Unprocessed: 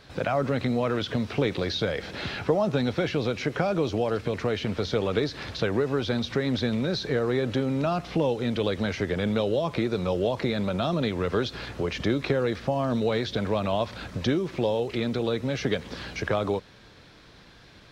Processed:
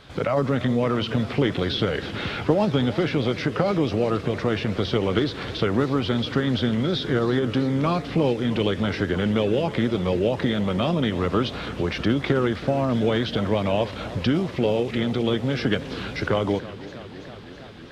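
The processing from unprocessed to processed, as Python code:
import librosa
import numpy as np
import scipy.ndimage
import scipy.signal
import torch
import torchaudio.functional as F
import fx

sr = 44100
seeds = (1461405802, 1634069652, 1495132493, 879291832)

y = fx.formant_shift(x, sr, semitones=-2)
y = fx.echo_warbled(y, sr, ms=323, feedback_pct=78, rate_hz=2.8, cents=121, wet_db=-16.5)
y = F.gain(torch.from_numpy(y), 3.5).numpy()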